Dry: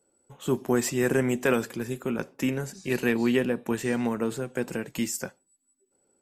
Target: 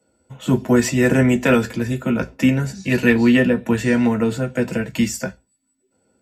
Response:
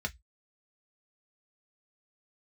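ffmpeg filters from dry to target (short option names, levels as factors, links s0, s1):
-filter_complex "[1:a]atrim=start_sample=2205[s0];[0:a][s0]afir=irnorm=-1:irlink=0,volume=1.88"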